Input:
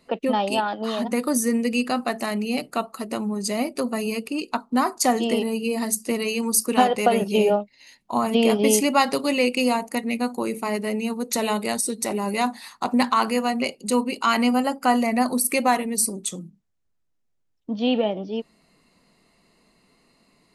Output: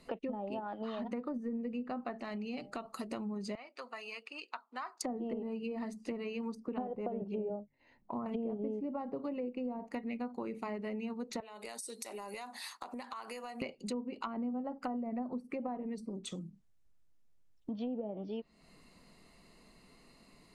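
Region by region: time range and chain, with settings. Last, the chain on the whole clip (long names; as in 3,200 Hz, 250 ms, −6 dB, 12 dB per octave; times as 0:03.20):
0:02.20–0:02.86: hum removal 200.4 Hz, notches 4 + downward compressor 2 to 1, threshold −29 dBFS + high-frequency loss of the air 76 metres
0:03.55–0:05.01: high-pass filter 1,300 Hz + head-to-tape spacing loss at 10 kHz 29 dB
0:07.59–0:08.26: low-pass filter 1,000 Hz + mains-hum notches 50/100/150 Hz + dynamic equaliser 760 Hz, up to −7 dB, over −39 dBFS, Q 2.2
0:11.40–0:13.62: high-pass filter 440 Hz + downward compressor 12 to 1, threshold −35 dBFS + multiband upward and downward expander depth 40%
whole clip: treble cut that deepens with the level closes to 570 Hz, closed at −17 dBFS; low-shelf EQ 73 Hz +9 dB; downward compressor 3 to 1, threshold −40 dBFS; level −1 dB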